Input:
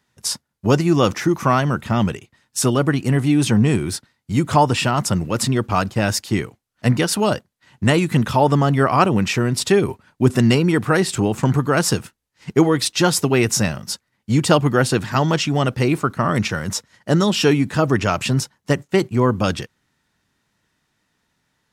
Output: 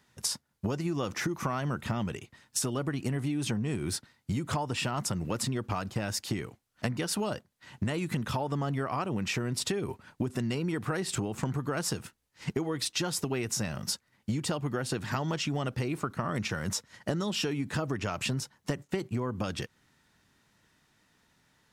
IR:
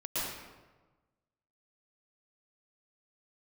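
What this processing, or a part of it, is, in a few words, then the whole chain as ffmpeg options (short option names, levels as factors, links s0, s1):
serial compression, leveller first: -af "acompressor=threshold=0.112:ratio=3,acompressor=threshold=0.0282:ratio=5,volume=1.19"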